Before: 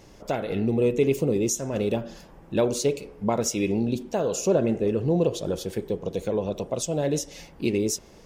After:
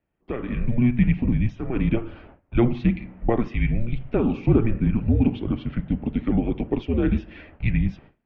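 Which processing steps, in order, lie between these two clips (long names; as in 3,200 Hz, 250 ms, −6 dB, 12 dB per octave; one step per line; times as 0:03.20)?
automatic gain control gain up to 9.5 dB
noise gate with hold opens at −30 dBFS
single-sideband voice off tune −240 Hz 160–3,000 Hz
level −4 dB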